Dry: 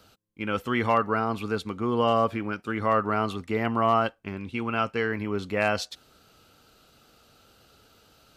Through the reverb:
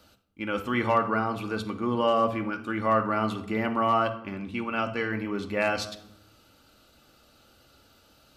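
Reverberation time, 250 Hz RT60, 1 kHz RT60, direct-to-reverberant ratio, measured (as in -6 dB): 0.80 s, 1.3 s, 0.75 s, 5.0 dB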